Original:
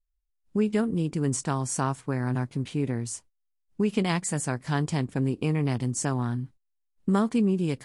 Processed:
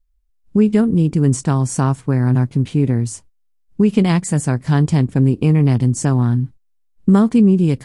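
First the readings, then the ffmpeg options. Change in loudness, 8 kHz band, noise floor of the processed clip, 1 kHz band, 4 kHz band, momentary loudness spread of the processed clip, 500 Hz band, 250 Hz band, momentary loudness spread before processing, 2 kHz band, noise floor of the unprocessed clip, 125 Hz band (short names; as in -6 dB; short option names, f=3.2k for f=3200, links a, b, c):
+11.5 dB, +4.5 dB, -61 dBFS, +6.0 dB, +4.5 dB, 7 LU, +8.5 dB, +12.0 dB, 7 LU, +5.0 dB, -76 dBFS, +13.5 dB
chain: -af "lowshelf=f=320:g=11,volume=4.5dB"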